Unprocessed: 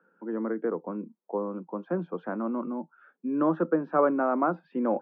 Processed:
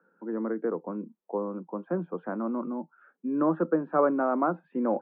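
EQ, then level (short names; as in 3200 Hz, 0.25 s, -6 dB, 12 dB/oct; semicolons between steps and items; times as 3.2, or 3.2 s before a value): LPF 2300 Hz 12 dB/oct; air absorption 110 m; 0.0 dB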